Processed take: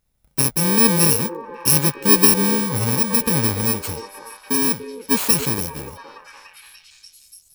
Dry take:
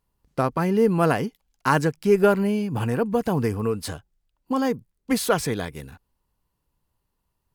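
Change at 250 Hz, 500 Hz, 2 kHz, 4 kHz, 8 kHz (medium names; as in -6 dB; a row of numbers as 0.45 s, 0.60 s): +2.0 dB, -3.5 dB, +3.0 dB, +12.5 dB, +18.0 dB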